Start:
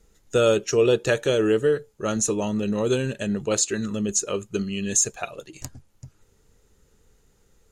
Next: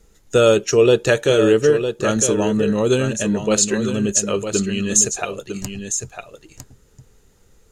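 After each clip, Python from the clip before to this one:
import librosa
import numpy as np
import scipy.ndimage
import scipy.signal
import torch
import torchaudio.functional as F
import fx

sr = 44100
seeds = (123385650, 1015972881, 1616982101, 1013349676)

y = x + 10.0 ** (-8.5 / 20.0) * np.pad(x, (int(955 * sr / 1000.0), 0))[:len(x)]
y = F.gain(torch.from_numpy(y), 5.5).numpy()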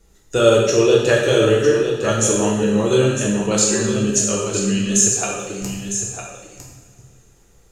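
y = fx.rev_double_slope(x, sr, seeds[0], early_s=0.91, late_s=3.4, knee_db=-19, drr_db=-3.0)
y = F.gain(torch.from_numpy(y), -3.5).numpy()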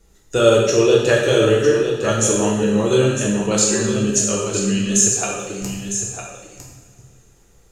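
y = x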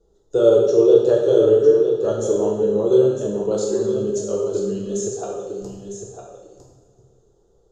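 y = fx.curve_eq(x, sr, hz=(270.0, 400.0, 1400.0, 2300.0, 3400.0, 7100.0, 10000.0), db=(0, 13, -5, -25, -4, -8, -19))
y = F.gain(torch.from_numpy(y), -9.0).numpy()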